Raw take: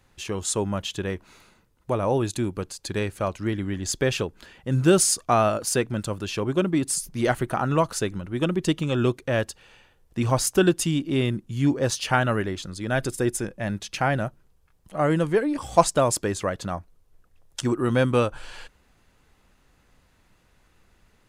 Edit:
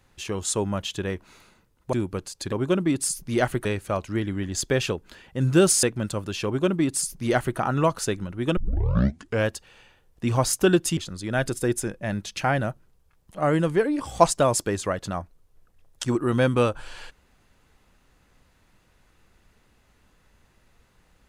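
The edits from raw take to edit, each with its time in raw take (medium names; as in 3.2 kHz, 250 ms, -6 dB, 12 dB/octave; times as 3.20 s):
1.93–2.37 s: delete
5.14–5.77 s: delete
6.39–7.52 s: copy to 2.96 s
8.51 s: tape start 0.90 s
10.91–12.54 s: delete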